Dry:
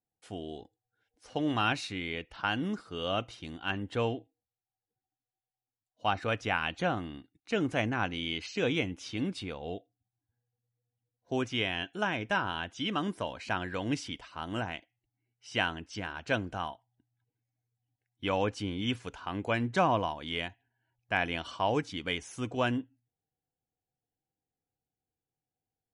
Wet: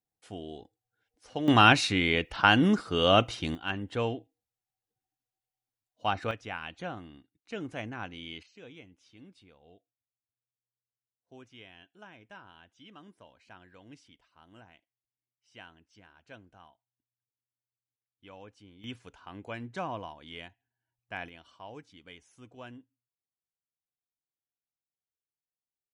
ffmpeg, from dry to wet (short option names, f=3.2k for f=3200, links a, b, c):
-af "asetnsamples=n=441:p=0,asendcmd='1.48 volume volume 10dB;3.55 volume volume 0dB;6.31 volume volume -8dB;8.43 volume volume -20dB;18.84 volume volume -9.5dB;21.29 volume volume -17dB',volume=-1dB"